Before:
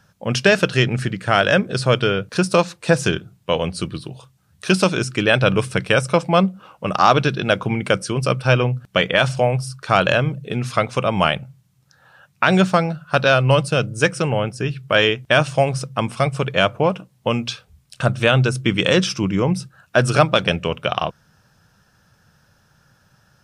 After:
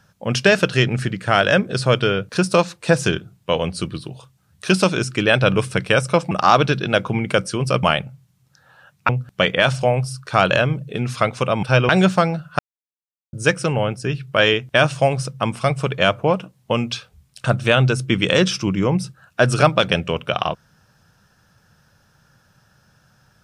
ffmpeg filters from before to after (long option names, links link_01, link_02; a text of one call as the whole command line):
ffmpeg -i in.wav -filter_complex "[0:a]asplit=8[link_01][link_02][link_03][link_04][link_05][link_06][link_07][link_08];[link_01]atrim=end=6.312[link_09];[link_02]atrim=start=6.868:end=8.392[link_10];[link_03]atrim=start=11.188:end=12.452[link_11];[link_04]atrim=start=8.648:end=11.192[link_12];[link_05]atrim=start=8.388:end=8.652[link_13];[link_06]atrim=start=12.448:end=13.15,asetpts=PTS-STARTPTS,afade=type=out:start_time=0.698:duration=0.004:curve=hsin[link_14];[link_07]atrim=start=13.15:end=13.89,asetpts=PTS-STARTPTS,volume=0[link_15];[link_08]atrim=start=13.89,asetpts=PTS-STARTPTS,afade=type=in:duration=0.004:curve=hsin[link_16];[link_09][link_10]acrossfade=duration=0.004:curve1=hsin:curve2=hsin[link_17];[link_17][link_11]acrossfade=duration=0.004:curve1=hsin:curve2=hsin[link_18];[link_18][link_12]acrossfade=duration=0.004:curve1=hsin:curve2=hsin[link_19];[link_19][link_13]acrossfade=duration=0.004:curve1=hsin:curve2=hsin[link_20];[link_14][link_15][link_16]concat=n=3:v=0:a=1[link_21];[link_20][link_21]acrossfade=duration=0.004:curve1=hsin:curve2=hsin" out.wav